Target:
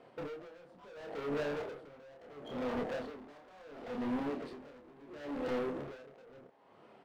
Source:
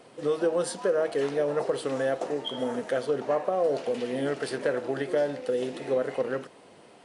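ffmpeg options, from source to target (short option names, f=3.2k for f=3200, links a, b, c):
-filter_complex "[0:a]aemphasis=mode=reproduction:type=riaa,afwtdn=0.0316,asettb=1/sr,asplit=3[a][b][c];[a]atrim=end=2.994[d];[b]atrim=start=2.99:end=5.59,asetpts=PTS-STARTPTS,afade=t=in:d=0.004:c=qsin,afade=t=out:st=2.596:d=0.004:c=qsin,equalizer=f=125:t=o:w=1:g=-7,equalizer=f=250:t=o:w=1:g=11,equalizer=f=500:t=o:w=1:g=-3,equalizer=f=2k:t=o:w=1:g=10,equalizer=f=4k:t=o:w=1:g=11,equalizer=f=8k:t=o:w=1:g=9[e];[c]atrim=start=5.586[f];[d][e]acrossfade=d=0.004:c1=hsin:c2=qsin[g];[g][f]acrossfade=d=0.004:c1=qsin:c2=hsin,acompressor=threshold=-30dB:ratio=6,asplit=2[h][i];[i]highpass=f=720:p=1,volume=23dB,asoftclip=type=tanh:threshold=-20.5dB[j];[h][j]amix=inputs=2:normalize=0,lowpass=f=3.6k:p=1,volume=-6dB,asoftclip=type=tanh:threshold=-36dB,aeval=exprs='0.0158*(cos(1*acos(clip(val(0)/0.0158,-1,1)))-cos(1*PI/2))+0.002*(cos(3*acos(clip(val(0)/0.0158,-1,1)))-cos(3*PI/2))+0.000316*(cos(7*acos(clip(val(0)/0.0158,-1,1)))-cos(7*PI/2))':c=same,asplit=2[k][l];[l]adelay=28,volume=-4dB[m];[k][m]amix=inputs=2:normalize=0,asplit=7[n][o][p][q][r][s][t];[o]adelay=86,afreqshift=140,volume=-21dB[u];[p]adelay=172,afreqshift=280,volume=-24.7dB[v];[q]adelay=258,afreqshift=420,volume=-28.5dB[w];[r]adelay=344,afreqshift=560,volume=-32.2dB[x];[s]adelay=430,afreqshift=700,volume=-36dB[y];[t]adelay=516,afreqshift=840,volume=-39.7dB[z];[n][u][v][w][x][y][z]amix=inputs=7:normalize=0,aeval=exprs='val(0)*pow(10,-22*(0.5-0.5*cos(2*PI*0.72*n/s))/20)':c=same"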